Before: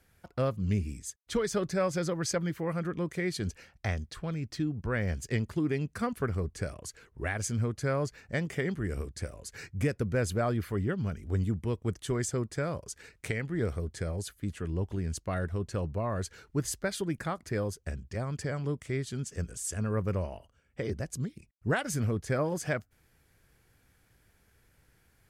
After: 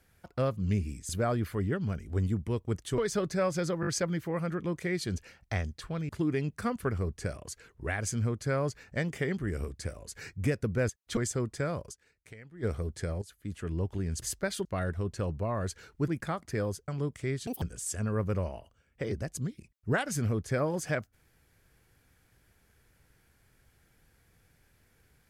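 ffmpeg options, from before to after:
-filter_complex "[0:a]asplit=18[a][b][c][d][e][f][g][h][i][j][k][l][m][n][o][p][q][r];[a]atrim=end=1.092[s];[b]atrim=start=10.258:end=12.152[t];[c]atrim=start=1.368:end=2.222[u];[d]atrim=start=2.198:end=2.222[v];[e]atrim=start=2.198:end=2.222[w];[f]atrim=start=2.198:end=4.422[x];[g]atrim=start=5.458:end=10.262[y];[h]atrim=start=1.088:end=1.372[z];[i]atrim=start=12.148:end=13.04,asetpts=PTS-STARTPTS,afade=t=out:st=0.742:d=0.15:c=exp:silence=0.158489[aa];[j]atrim=start=13.04:end=13.47,asetpts=PTS-STARTPTS,volume=-16dB[ab];[k]atrim=start=13.47:end=14.2,asetpts=PTS-STARTPTS,afade=t=in:d=0.15:c=exp:silence=0.158489,afade=t=out:st=0.726:d=0.004:c=hsin:silence=0.16788[ac];[l]atrim=start=14.2:end=15.202,asetpts=PTS-STARTPTS,afade=t=in:d=0.45:silence=0.16788[ad];[m]atrim=start=16.628:end=17.062[ae];[n]atrim=start=15.198:end=16.632[af];[o]atrim=start=17.058:end=17.862[ag];[p]atrim=start=18.538:end=19.134[ah];[q]atrim=start=19.13:end=19.4,asetpts=PTS-STARTPTS,asetrate=80703,aresample=44100[ai];[r]atrim=start=19.396[aj];[s][t]acrossfade=d=0.004:c1=hsin:c2=hsin[ak];[ak][u]acrossfade=d=0.004:c1=hsin:c2=hsin[al];[al][v]acrossfade=d=0.004:c1=hsin:c2=hsin[am];[am][w]acrossfade=d=0.004:c1=hsin:c2=hsin[an];[an][x]acrossfade=d=0.004:c1=hsin:c2=hsin[ao];[ao][y]acrossfade=d=0.004:c1=hsin:c2=hsin[ap];[ap][z]acrossfade=d=0.004:c1=hsin:c2=hsin[aq];[aa][ab][ac][ad]concat=n=4:v=0:a=1[ar];[aq][ar]acrossfade=d=0.004:c1=hsin:c2=hsin[as];[as][ae]acrossfade=d=0.004:c1=hsin:c2=hsin[at];[at][af]acrossfade=d=0.004:c1=hsin:c2=hsin[au];[au][ag]acrossfade=d=0.004:c1=hsin:c2=hsin[av];[av][ah]acrossfade=d=0.004:c1=hsin:c2=hsin[aw];[aw][ai]acrossfade=d=0.004:c1=hsin:c2=hsin[ax];[ax][aj]acrossfade=d=0.004:c1=hsin:c2=hsin"

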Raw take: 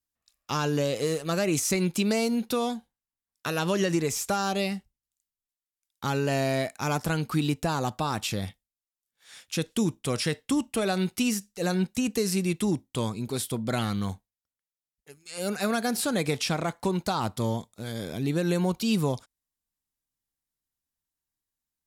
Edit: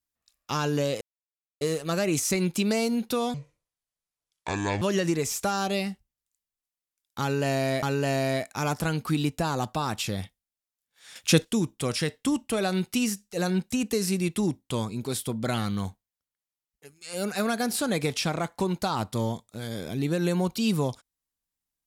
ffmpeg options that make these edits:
-filter_complex "[0:a]asplit=7[a][b][c][d][e][f][g];[a]atrim=end=1.01,asetpts=PTS-STARTPTS,afade=t=out:st=1.006:d=0.004:c=hsin,apad=pad_dur=0.6[h];[b]atrim=start=1.01:end=2.744,asetpts=PTS-STARTPTS,afade=t=in:d=0.004:c=hsin[i];[c]atrim=start=2.74:end=3.67,asetpts=PTS-STARTPTS,asetrate=27783,aresample=44100[j];[d]atrim=start=3.666:end=6.682[k];[e]atrim=start=6.068:end=9.402[l];[f]atrim=start=9.398:end=9.692,asetpts=PTS-STARTPTS,volume=9dB[m];[g]atrim=start=9.688[n];[h][i]concat=n=2:v=0:a=1[o];[o][j]acrossfade=d=0.004:c1=hsin:c2=hsin[p];[p][k]acrossfade=d=0.004:c1=hsin:c2=hsin[q];[q][l]acrossfade=d=0.004:c1=hsin:c2=hsin[r];[r][m]acrossfade=d=0.004:c1=hsin:c2=hsin[s];[s][n]acrossfade=d=0.004:c1=hsin:c2=hsin"

